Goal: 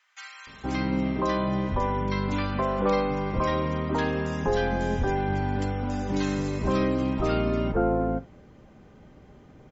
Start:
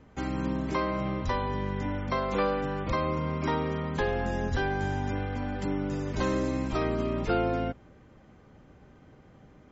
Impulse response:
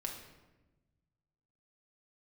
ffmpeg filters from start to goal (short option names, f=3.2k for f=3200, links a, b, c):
-filter_complex "[0:a]acrossover=split=1400[a][b];[a]adelay=470[c];[c][b]amix=inputs=2:normalize=0,asplit=2[d][e];[1:a]atrim=start_sample=2205,atrim=end_sample=3087[f];[e][f]afir=irnorm=-1:irlink=0,volume=-3.5dB[g];[d][g]amix=inputs=2:normalize=0"